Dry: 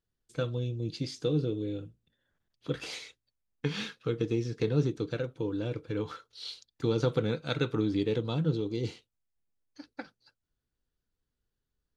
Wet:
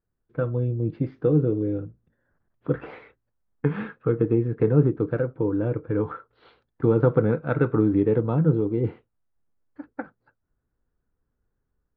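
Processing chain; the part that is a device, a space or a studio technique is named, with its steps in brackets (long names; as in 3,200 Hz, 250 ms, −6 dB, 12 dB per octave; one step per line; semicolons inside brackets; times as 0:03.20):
action camera in a waterproof case (low-pass filter 1,600 Hz 24 dB per octave; automatic gain control gain up to 4 dB; level +4.5 dB; AAC 96 kbit/s 44,100 Hz)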